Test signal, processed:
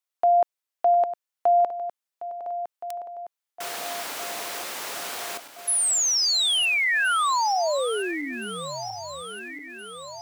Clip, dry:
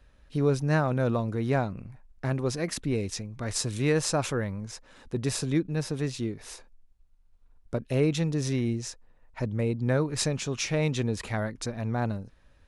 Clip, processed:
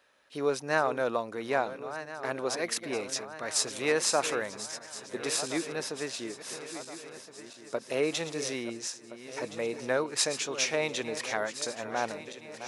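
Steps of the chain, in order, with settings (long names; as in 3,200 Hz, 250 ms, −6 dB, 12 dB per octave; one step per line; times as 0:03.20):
feedback delay that plays each chunk backwards 685 ms, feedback 71%, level −12 dB
high-pass filter 510 Hz 12 dB per octave
level +2.5 dB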